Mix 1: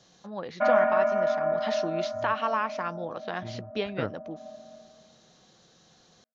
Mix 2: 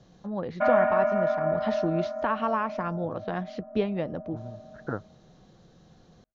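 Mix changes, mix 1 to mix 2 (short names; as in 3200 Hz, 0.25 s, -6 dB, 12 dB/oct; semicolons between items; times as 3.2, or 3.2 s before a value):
first voice: add tilt -3.5 dB/oct; second voice: entry +0.90 s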